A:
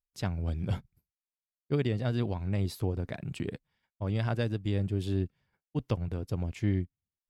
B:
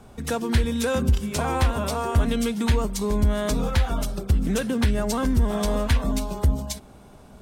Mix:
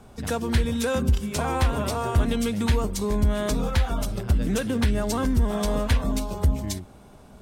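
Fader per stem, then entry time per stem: −6.0, −1.0 decibels; 0.00, 0.00 seconds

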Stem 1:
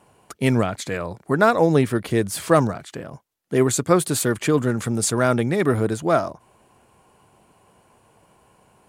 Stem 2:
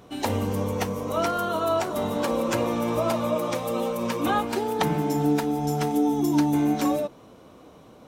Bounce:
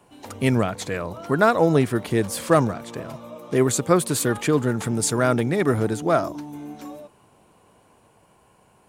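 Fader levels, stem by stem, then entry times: −1.0, −14.0 decibels; 0.00, 0.00 seconds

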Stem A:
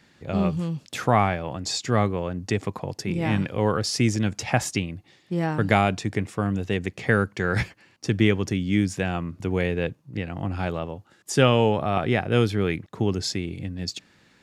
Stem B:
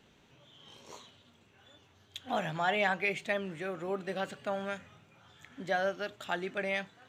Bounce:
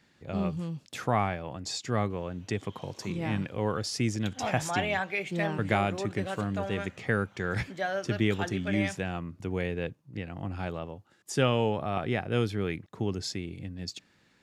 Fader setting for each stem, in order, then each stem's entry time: −7.0, −0.5 decibels; 0.00, 2.10 seconds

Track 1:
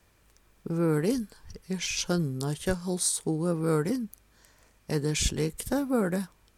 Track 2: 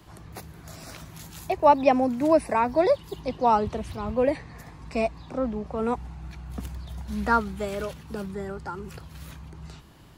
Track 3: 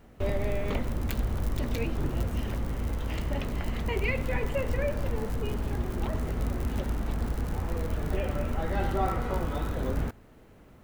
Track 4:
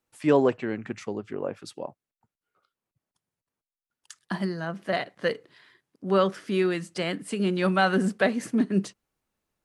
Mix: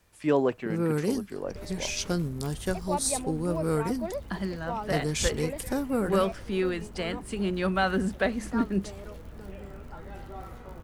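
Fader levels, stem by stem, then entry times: −1.5, −14.0, −14.0, −3.5 decibels; 0.00, 1.25, 1.35, 0.00 seconds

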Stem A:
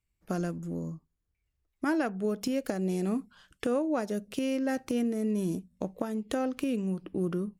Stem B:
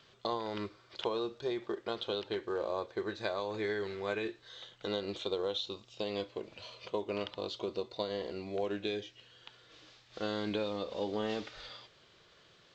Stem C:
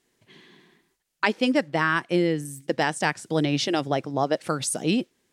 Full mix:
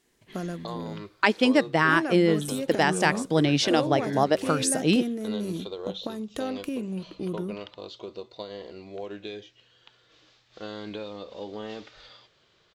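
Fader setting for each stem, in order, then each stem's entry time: −1.5, −2.0, +1.5 decibels; 0.05, 0.40, 0.00 seconds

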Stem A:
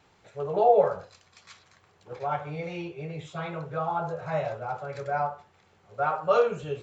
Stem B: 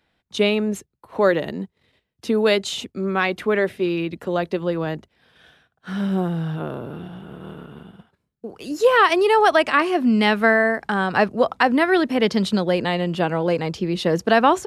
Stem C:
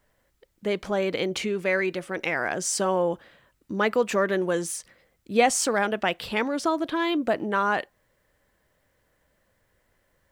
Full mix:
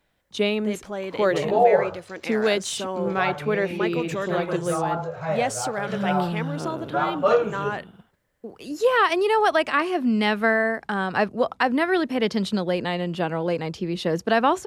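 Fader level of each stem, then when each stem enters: +2.5, −4.0, −5.5 decibels; 0.95, 0.00, 0.00 seconds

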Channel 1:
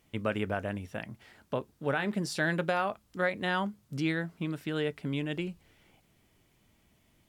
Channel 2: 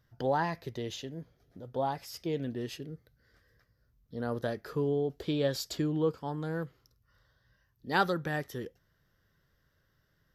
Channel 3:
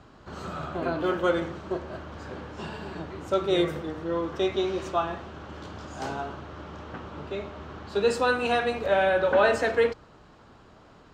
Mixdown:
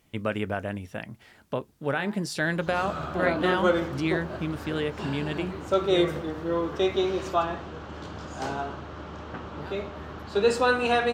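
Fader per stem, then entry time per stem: +2.5, −18.0, +1.5 decibels; 0.00, 1.70, 2.40 seconds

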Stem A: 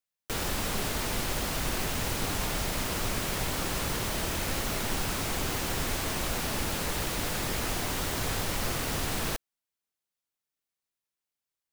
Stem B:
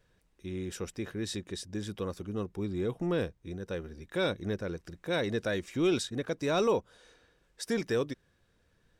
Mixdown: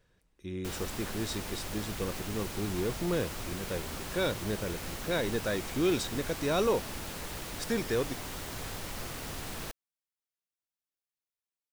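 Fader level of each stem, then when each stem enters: −8.5, −0.5 decibels; 0.35, 0.00 seconds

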